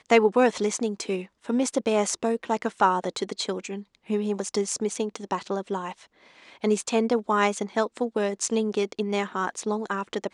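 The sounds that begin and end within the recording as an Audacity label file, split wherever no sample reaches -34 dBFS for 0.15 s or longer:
1.490000	3.810000	sound
4.100000	5.920000	sound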